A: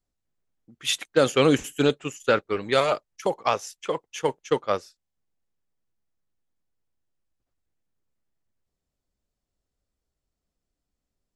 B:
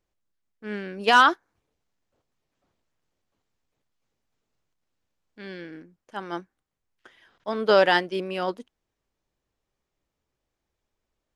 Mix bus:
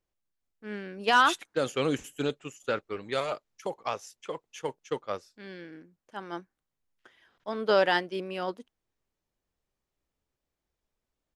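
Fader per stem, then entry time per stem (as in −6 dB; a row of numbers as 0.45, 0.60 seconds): −9.0, −5.0 decibels; 0.40, 0.00 seconds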